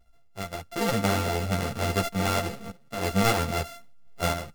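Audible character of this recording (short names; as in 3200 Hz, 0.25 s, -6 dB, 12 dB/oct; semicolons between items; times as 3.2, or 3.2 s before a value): a buzz of ramps at a fixed pitch in blocks of 64 samples; random-step tremolo 3.7 Hz, depth 75%; a shimmering, thickened sound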